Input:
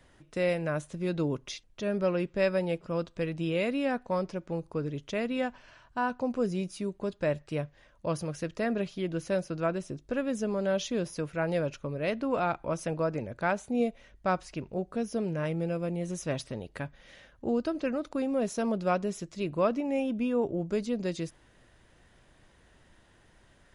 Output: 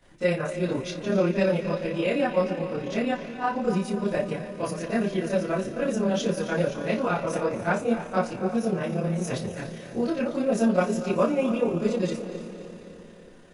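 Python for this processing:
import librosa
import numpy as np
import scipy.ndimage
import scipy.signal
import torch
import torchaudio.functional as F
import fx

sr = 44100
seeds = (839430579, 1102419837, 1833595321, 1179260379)

y = fx.echo_diffused(x, sr, ms=498, feedback_pct=58, wet_db=-10.5)
y = fx.rev_schroeder(y, sr, rt60_s=0.35, comb_ms=31, drr_db=-9.0)
y = fx.stretch_grains(y, sr, factor=0.57, grain_ms=58.0)
y = F.gain(torch.from_numpy(y), -4.0).numpy()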